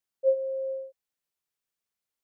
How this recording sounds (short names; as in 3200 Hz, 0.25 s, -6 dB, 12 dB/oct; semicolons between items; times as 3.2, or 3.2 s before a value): noise floor -89 dBFS; spectral tilt -5.0 dB/oct